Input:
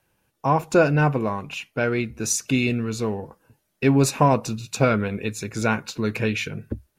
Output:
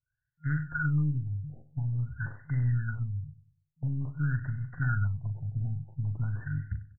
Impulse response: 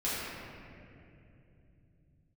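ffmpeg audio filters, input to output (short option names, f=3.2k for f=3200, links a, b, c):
-filter_complex "[0:a]agate=range=-16dB:threshold=-43dB:ratio=16:detection=peak,afftfilt=real='re*(1-between(b*sr/4096,160,1400))':imag='im*(1-between(b*sr/4096,160,1400))':win_size=4096:overlap=0.75,equalizer=f=1.3k:w=4.4:g=8,bandreject=f=403.2:t=h:w=4,bandreject=f=806.4:t=h:w=4,bandreject=f=1.2096k:t=h:w=4,bandreject=f=1.6128k:t=h:w=4,bandreject=f=2.016k:t=h:w=4,bandreject=f=2.4192k:t=h:w=4,bandreject=f=2.8224k:t=h:w=4,bandreject=f=3.2256k:t=h:w=4,bandreject=f=3.6288k:t=h:w=4,bandreject=f=4.032k:t=h:w=4,bandreject=f=4.4352k:t=h:w=4,bandreject=f=4.8384k:t=h:w=4,bandreject=f=5.2416k:t=h:w=4,bandreject=f=5.6448k:t=h:w=4,bandreject=f=6.048k:t=h:w=4,bandreject=f=6.4512k:t=h:w=4,bandreject=f=6.8544k:t=h:w=4,acrossover=split=350[a][b];[a]alimiter=level_in=2dB:limit=-24dB:level=0:latency=1:release=57,volume=-2dB[c];[b]acompressor=threshold=-32dB:ratio=20[d];[c][d]amix=inputs=2:normalize=0,aeval=exprs='0.178*(cos(1*acos(clip(val(0)/0.178,-1,1)))-cos(1*PI/2))+0.00794*(cos(3*acos(clip(val(0)/0.178,-1,1)))-cos(3*PI/2))+0.0251*(cos(4*acos(clip(val(0)/0.178,-1,1)))-cos(4*PI/2))+0.0158*(cos(5*acos(clip(val(0)/0.178,-1,1)))-cos(5*PI/2))+0.002*(cos(7*acos(clip(val(0)/0.178,-1,1)))-cos(7*PI/2))':c=same,asplit=2[e][f];[f]adelay=40,volume=-9dB[g];[e][g]amix=inputs=2:normalize=0,asplit=2[h][i];[i]aecho=0:1:97|194|291|388:0.158|0.0682|0.0293|0.0126[j];[h][j]amix=inputs=2:normalize=0,afftfilt=real='re*lt(b*sr/1024,800*pow(2100/800,0.5+0.5*sin(2*PI*0.48*pts/sr)))':imag='im*lt(b*sr/1024,800*pow(2100/800,0.5+0.5*sin(2*PI*0.48*pts/sr)))':win_size=1024:overlap=0.75"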